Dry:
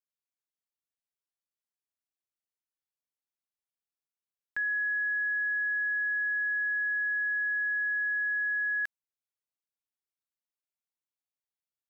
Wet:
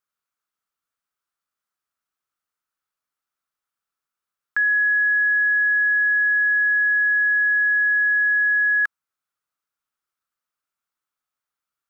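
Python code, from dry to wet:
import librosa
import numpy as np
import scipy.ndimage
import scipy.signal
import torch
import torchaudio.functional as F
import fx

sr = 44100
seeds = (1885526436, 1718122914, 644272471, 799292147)

y = fx.peak_eq(x, sr, hz=1300.0, db=14.5, octaves=0.63)
y = y * 10.0 ** (5.0 / 20.0)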